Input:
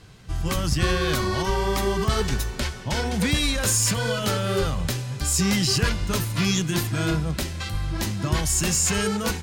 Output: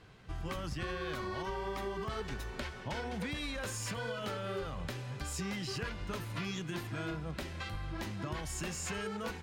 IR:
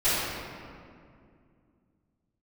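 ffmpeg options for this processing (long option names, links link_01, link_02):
-af "bass=frequency=250:gain=-6,treble=frequency=4000:gain=-12,acompressor=threshold=-31dB:ratio=4,volume=-5dB"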